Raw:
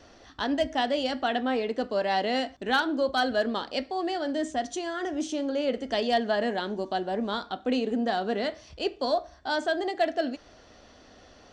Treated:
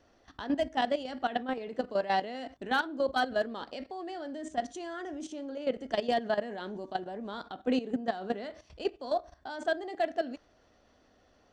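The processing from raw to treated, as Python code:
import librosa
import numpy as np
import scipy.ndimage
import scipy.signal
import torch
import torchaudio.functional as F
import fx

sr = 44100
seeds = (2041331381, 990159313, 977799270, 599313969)

y = fx.peak_eq(x, sr, hz=4500.0, db=-4.5, octaves=1.7)
y = fx.level_steps(y, sr, step_db=13)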